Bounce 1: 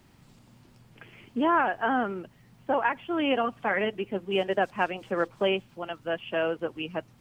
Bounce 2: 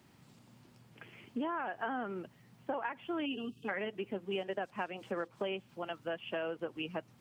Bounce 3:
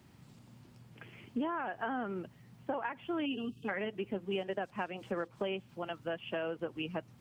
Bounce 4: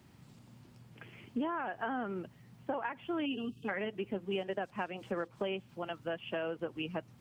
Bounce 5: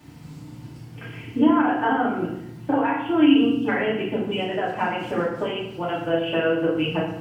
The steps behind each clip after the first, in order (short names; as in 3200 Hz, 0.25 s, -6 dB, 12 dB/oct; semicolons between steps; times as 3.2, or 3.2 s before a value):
spectral gain 3.26–3.69, 460–2500 Hz -24 dB; HPF 100 Hz; compressor 6:1, threshold -30 dBFS, peak gain reduction 11.5 dB; gain -3.5 dB
low shelf 140 Hz +9.5 dB
nothing audible
FDN reverb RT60 0.78 s, low-frequency decay 1.5×, high-frequency decay 0.85×, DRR -7.5 dB; gain +5.5 dB